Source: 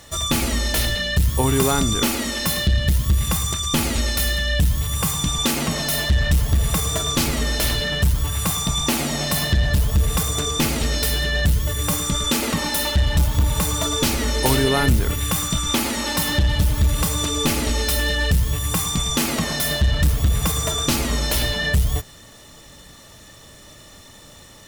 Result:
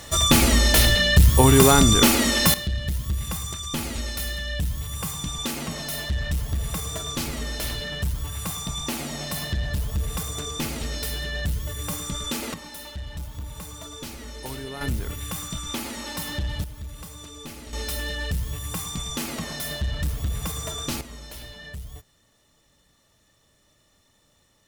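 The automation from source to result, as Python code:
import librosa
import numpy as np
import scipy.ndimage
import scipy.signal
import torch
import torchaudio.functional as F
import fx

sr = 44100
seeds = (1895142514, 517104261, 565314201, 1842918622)

y = fx.gain(x, sr, db=fx.steps((0.0, 4.0), (2.54, -8.5), (12.54, -17.0), (14.81, -10.0), (16.64, -19.0), (17.73, -9.0), (21.01, -19.0)))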